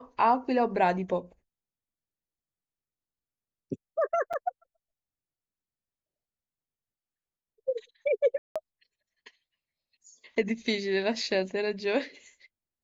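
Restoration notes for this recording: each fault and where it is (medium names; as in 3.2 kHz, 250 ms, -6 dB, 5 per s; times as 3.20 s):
4.33–4.34 s: dropout 6 ms
8.38–8.56 s: dropout 176 ms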